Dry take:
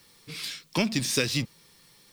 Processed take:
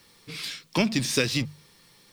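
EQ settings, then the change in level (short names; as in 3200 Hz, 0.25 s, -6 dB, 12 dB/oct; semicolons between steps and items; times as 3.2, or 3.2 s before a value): high shelf 5600 Hz -5 dB; notches 50/100/150 Hz; +2.5 dB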